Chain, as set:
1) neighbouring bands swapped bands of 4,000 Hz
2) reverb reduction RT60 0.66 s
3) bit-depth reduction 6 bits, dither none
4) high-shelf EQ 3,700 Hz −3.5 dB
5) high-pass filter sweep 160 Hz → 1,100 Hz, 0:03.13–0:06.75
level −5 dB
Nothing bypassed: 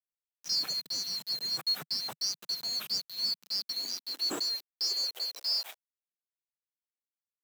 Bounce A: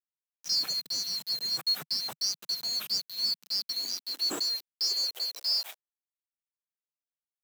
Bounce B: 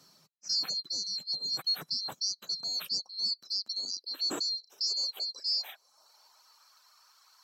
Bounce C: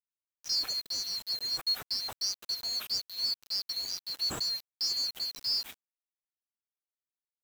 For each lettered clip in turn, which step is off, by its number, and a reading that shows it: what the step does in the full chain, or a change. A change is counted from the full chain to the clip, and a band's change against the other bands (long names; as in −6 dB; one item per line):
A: 4, 8 kHz band +2.5 dB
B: 3, distortion level −15 dB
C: 5, 250 Hz band −4.5 dB